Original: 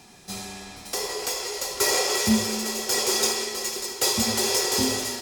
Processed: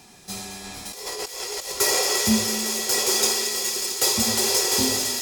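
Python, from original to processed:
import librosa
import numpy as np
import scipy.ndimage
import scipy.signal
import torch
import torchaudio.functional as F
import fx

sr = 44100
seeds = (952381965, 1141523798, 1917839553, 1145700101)

y = fx.high_shelf(x, sr, hz=6800.0, db=4.0)
y = fx.over_compress(y, sr, threshold_db=-32.0, ratio=-0.5, at=(0.64, 1.72))
y = fx.echo_wet_highpass(y, sr, ms=225, feedback_pct=83, hz=2100.0, wet_db=-9)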